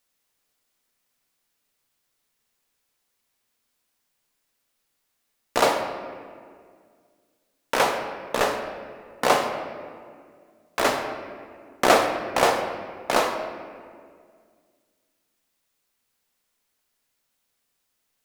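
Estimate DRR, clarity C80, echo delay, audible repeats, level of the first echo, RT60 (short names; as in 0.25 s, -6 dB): 3.5 dB, 7.5 dB, none, none, none, 2.0 s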